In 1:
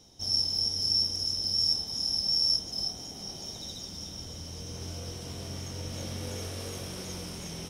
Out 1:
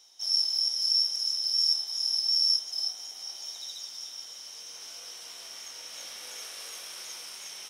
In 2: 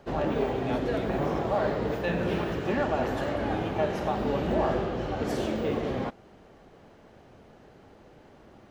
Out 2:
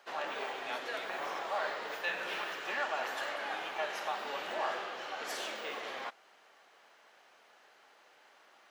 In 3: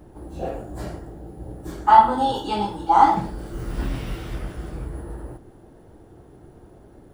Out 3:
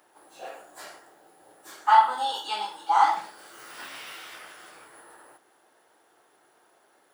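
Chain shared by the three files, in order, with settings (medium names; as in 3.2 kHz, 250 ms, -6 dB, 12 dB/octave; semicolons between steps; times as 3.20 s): high-pass 1.2 kHz 12 dB/octave; trim +1.5 dB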